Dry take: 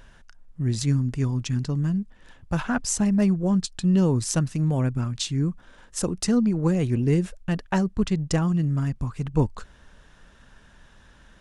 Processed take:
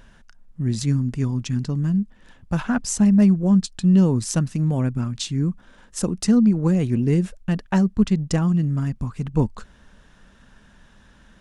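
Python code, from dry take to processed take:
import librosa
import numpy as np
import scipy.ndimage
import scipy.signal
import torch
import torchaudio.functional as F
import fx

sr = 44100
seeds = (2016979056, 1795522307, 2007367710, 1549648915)

y = fx.peak_eq(x, sr, hz=210.0, db=6.5, octaves=0.59)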